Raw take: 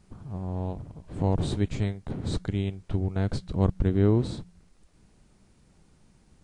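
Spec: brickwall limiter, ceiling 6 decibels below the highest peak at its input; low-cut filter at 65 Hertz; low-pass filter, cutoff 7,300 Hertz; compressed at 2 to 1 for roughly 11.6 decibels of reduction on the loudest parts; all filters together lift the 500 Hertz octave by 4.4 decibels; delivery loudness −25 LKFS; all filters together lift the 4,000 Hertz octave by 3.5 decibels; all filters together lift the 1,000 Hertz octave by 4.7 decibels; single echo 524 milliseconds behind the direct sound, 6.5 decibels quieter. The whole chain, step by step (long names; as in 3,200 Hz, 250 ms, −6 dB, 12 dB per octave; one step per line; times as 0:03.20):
high-pass filter 65 Hz
low-pass filter 7,300 Hz
parametric band 500 Hz +5 dB
parametric band 1,000 Hz +4 dB
parametric band 4,000 Hz +4 dB
downward compressor 2 to 1, threshold −37 dBFS
brickwall limiter −25.5 dBFS
single-tap delay 524 ms −6.5 dB
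level +12.5 dB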